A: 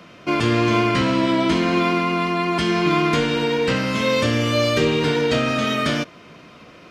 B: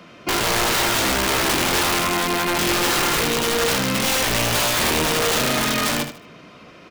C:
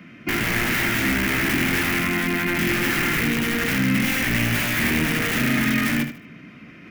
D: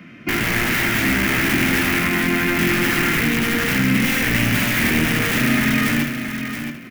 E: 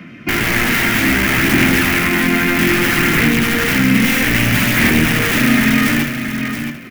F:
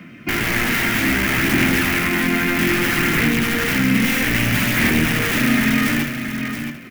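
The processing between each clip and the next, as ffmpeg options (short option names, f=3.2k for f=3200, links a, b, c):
-af "bandreject=f=50:t=h:w=6,bandreject=f=100:t=h:w=6,bandreject=f=150:t=h:w=6,aeval=exprs='(mod(5.62*val(0)+1,2)-1)/5.62':c=same,aecho=1:1:77|154|231:0.316|0.0885|0.0248"
-af "equalizer=f=125:t=o:w=1:g=4,equalizer=f=250:t=o:w=1:g=9,equalizer=f=500:t=o:w=1:g=-9,equalizer=f=1k:t=o:w=1:g=-9,equalizer=f=2k:t=o:w=1:g=10,equalizer=f=4k:t=o:w=1:g=-9,equalizer=f=8k:t=o:w=1:g=-7,areverse,acompressor=mode=upward:threshold=-38dB:ratio=2.5,areverse,volume=-2dB"
-af "aecho=1:1:673|1346:0.376|0.0601,volume=2.5dB"
-af "aphaser=in_gain=1:out_gain=1:delay=4.4:decay=0.21:speed=0.62:type=sinusoidal,volume=4dB"
-af "acrusher=bits=9:mix=0:aa=0.000001,volume=-4dB"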